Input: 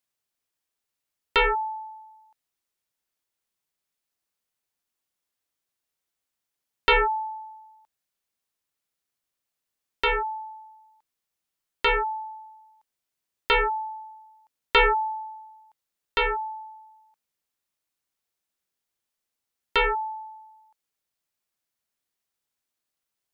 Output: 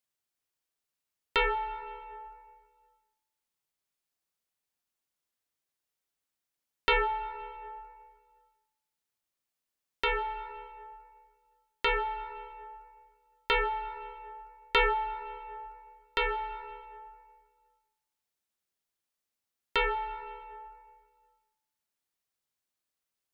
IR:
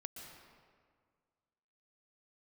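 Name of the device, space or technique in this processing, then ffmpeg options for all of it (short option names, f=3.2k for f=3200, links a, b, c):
ducked reverb: -filter_complex "[0:a]asplit=3[a][b][c];[1:a]atrim=start_sample=2205[d];[b][d]afir=irnorm=-1:irlink=0[e];[c]apad=whole_len=1029213[f];[e][f]sidechaincompress=threshold=-27dB:ratio=10:attack=16:release=711,volume=0.5dB[g];[a][g]amix=inputs=2:normalize=0,volume=-7.5dB"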